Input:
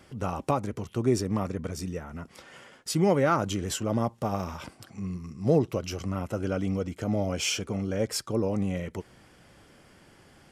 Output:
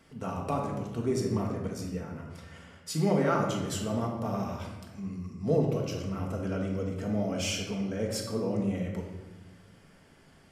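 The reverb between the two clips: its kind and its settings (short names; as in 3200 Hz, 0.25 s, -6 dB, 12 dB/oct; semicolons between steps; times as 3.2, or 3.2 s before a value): shoebox room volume 740 m³, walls mixed, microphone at 1.6 m; gain -6.5 dB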